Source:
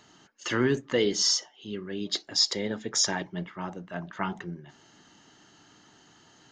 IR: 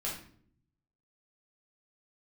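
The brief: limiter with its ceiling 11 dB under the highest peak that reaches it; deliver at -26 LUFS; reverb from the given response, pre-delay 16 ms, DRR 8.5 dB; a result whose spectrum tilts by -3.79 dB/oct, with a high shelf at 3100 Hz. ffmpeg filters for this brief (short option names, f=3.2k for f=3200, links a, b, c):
-filter_complex "[0:a]highshelf=f=3.1k:g=-5.5,alimiter=level_in=0.5dB:limit=-24dB:level=0:latency=1,volume=-0.5dB,asplit=2[a][b];[1:a]atrim=start_sample=2205,adelay=16[c];[b][c]afir=irnorm=-1:irlink=0,volume=-11.5dB[d];[a][d]amix=inputs=2:normalize=0,volume=9dB"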